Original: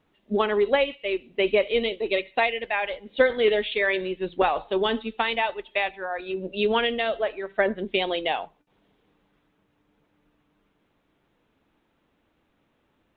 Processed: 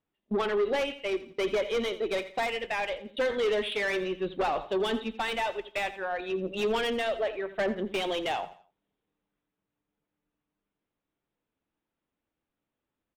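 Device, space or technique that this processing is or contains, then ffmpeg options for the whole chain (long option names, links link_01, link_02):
saturation between pre-emphasis and de-emphasis: -filter_complex "[0:a]agate=range=-18dB:threshold=-44dB:ratio=16:detection=peak,highshelf=frequency=2300:gain=11.5,asoftclip=type=tanh:threshold=-22dB,highshelf=frequency=2300:gain=-11.5,asettb=1/sr,asplit=3[link_01][link_02][link_03];[link_01]atrim=end=1.064[link_04];[link_02]atrim=start=1.06:end=2.5,asetpts=PTS-STARTPTS,afade=type=in:duration=0.004:curve=qsin,afade=type=out:start_time=1.436:duration=0.004:curve=qsin,bandreject=frequency=2700:width=8.3[link_05];[link_03]atrim=start=2.496[link_06];[link_04][link_05]acrossfade=duration=0.004:curve1=hsin:curve2=qsin[link_07];[link_07][link_06]acrossfade=duration=0.004:curve1=qsin:curve2=hsin,aecho=1:1:85|170|255:0.168|0.0571|0.0194"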